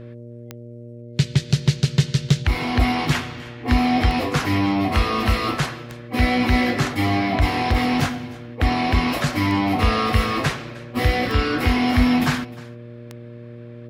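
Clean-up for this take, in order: de-click; de-hum 118.7 Hz, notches 5; inverse comb 307 ms -21 dB

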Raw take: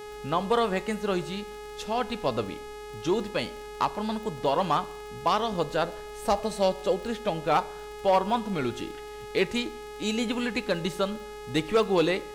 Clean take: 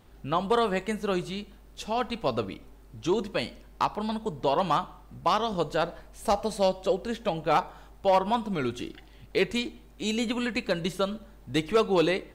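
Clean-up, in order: de-click; de-hum 419.5 Hz, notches 31

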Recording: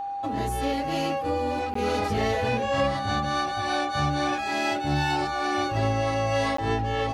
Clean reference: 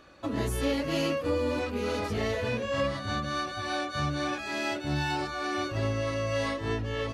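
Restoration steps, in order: band-stop 800 Hz, Q 30; interpolate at 1.74/6.57 s, 14 ms; gain correction -4 dB, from 1.78 s

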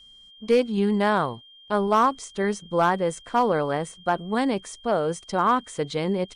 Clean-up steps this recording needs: clip repair -12 dBFS; band-stop 3.2 kHz, Q 30

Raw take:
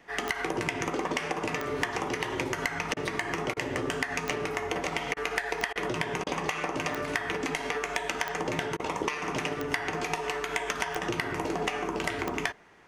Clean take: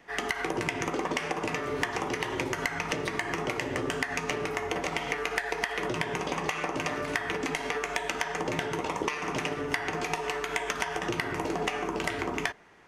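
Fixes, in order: de-click; interpolate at 2.94/3.54/5.14/5.73/6.24/8.77 s, 25 ms

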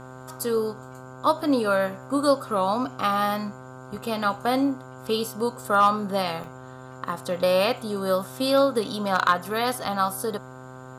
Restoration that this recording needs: clip repair -10 dBFS; de-hum 129 Hz, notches 12; interpolate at 4.01/6.44 s, 2.6 ms

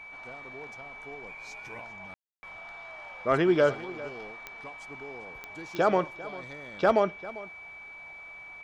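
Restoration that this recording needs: de-click; band-stop 2.3 kHz, Q 30; room tone fill 2.14–2.43 s; inverse comb 397 ms -18 dB

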